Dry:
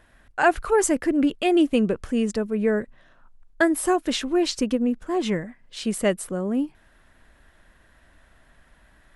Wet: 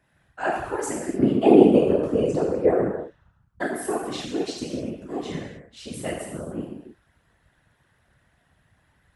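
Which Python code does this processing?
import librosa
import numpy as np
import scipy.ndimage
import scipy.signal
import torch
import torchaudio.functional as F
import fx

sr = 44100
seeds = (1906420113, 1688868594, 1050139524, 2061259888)

y = fx.band_shelf(x, sr, hz=550.0, db=13.0, octaves=2.5, at=(1.19, 2.8))
y = fx.rev_gated(y, sr, seeds[0], gate_ms=320, shape='falling', drr_db=-3.5)
y = fx.whisperise(y, sr, seeds[1])
y = scipy.signal.sosfilt(scipy.signal.butter(2, 41.0, 'highpass', fs=sr, output='sos'), y)
y = y * 10.0 ** (-12.0 / 20.0)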